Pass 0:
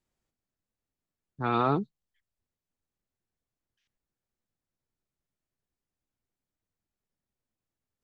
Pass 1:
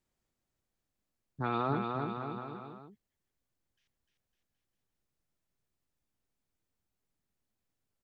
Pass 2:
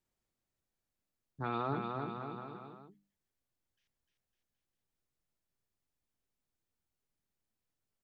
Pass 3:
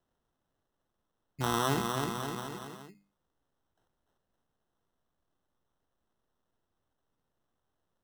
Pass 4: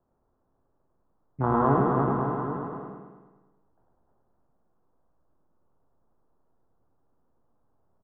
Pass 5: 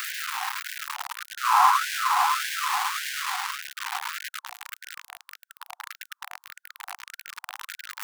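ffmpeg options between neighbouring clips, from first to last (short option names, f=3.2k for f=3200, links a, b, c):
-filter_complex "[0:a]acompressor=threshold=-33dB:ratio=2,asplit=2[a][b];[b]aecho=0:1:300|555|771.8|956|1113:0.631|0.398|0.251|0.158|0.1[c];[a][c]amix=inputs=2:normalize=0"
-af "bandreject=f=50:t=h:w=6,bandreject=f=100:t=h:w=6,bandreject=f=150:t=h:w=6,bandreject=f=200:t=h:w=6,bandreject=f=250:t=h:w=6,bandreject=f=300:t=h:w=6,volume=-3.5dB"
-af "acrusher=samples=19:mix=1:aa=0.000001,volume=6dB"
-af "lowpass=f=1.2k:w=0.5412,lowpass=f=1.2k:w=1.3066,aecho=1:1:105|210|315|420|525|630|735|840:0.708|0.404|0.23|0.131|0.0747|0.0426|0.0243|0.0138,volume=7dB"
-af "aeval=exprs='val(0)+0.5*0.0596*sgn(val(0))':c=same,afftfilt=real='re*gte(b*sr/1024,710*pow(1500/710,0.5+0.5*sin(2*PI*1.7*pts/sr)))':imag='im*gte(b*sr/1024,710*pow(1500/710,0.5+0.5*sin(2*PI*1.7*pts/sr)))':win_size=1024:overlap=0.75,volume=7dB"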